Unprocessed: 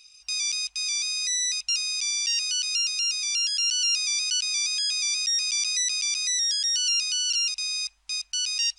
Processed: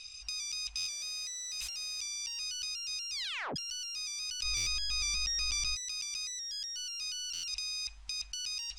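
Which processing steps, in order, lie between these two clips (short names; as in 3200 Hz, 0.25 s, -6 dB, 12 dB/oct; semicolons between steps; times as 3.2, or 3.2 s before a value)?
0.9–2.01 switching spikes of -31.5 dBFS; low shelf 190 Hz +12 dB; 3.13 tape stop 0.43 s; soft clip -27 dBFS, distortion -11 dB; 4.43–5.76 tilt -3 dB/oct; negative-ratio compressor -37 dBFS, ratio -1; LPF 7800 Hz 12 dB/oct; stuck buffer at 0.76/4.56/7.33, samples 512, times 8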